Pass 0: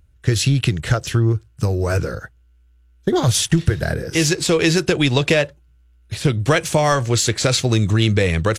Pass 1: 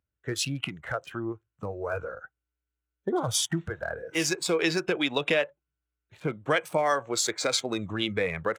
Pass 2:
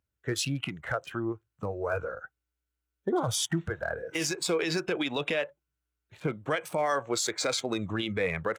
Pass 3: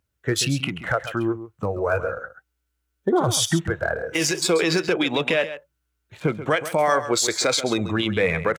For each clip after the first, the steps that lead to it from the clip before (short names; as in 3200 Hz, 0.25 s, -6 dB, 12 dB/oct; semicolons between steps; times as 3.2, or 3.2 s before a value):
Wiener smoothing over 9 samples; HPF 390 Hz 6 dB/oct; spectral noise reduction 12 dB; gain -6 dB
limiter -20 dBFS, peak gain reduction 10 dB; gain +1 dB
echo 0.134 s -12.5 dB; gain +8 dB